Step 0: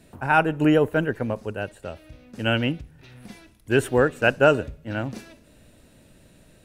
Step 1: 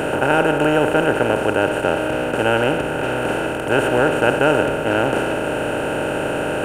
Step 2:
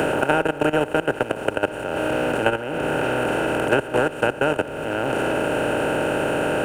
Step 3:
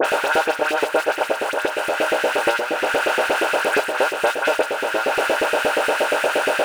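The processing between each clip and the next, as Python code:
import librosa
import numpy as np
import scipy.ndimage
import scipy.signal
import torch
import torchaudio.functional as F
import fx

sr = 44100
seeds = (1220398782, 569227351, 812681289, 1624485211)

y1 = fx.bin_compress(x, sr, power=0.2)
y1 = F.gain(torch.from_numpy(y1), -4.5).numpy()
y2 = fx.level_steps(y1, sr, step_db=16)
y2 = fx.dmg_noise_colour(y2, sr, seeds[0], colour='pink', level_db=-61.0)
y2 = fx.band_squash(y2, sr, depth_pct=100)
y2 = F.gain(torch.from_numpy(y2), -1.0).numpy()
y3 = fx.power_curve(y2, sr, exponent=0.5)
y3 = fx.filter_lfo_highpass(y3, sr, shape='saw_up', hz=8.5, low_hz=370.0, high_hz=2400.0, q=1.5)
y3 = fx.dispersion(y3, sr, late='highs', ms=52.0, hz=2700.0)
y3 = F.gain(torch.from_numpy(y3), -5.5).numpy()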